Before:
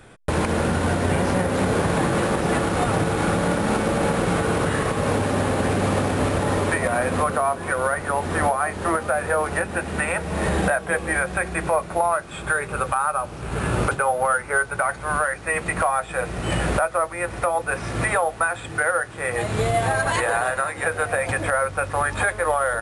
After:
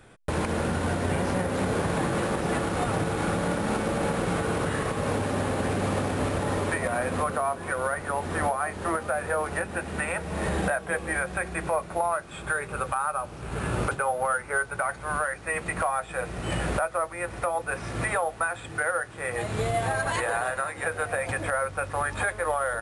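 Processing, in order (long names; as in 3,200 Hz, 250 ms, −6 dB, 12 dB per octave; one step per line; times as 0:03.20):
level −5.5 dB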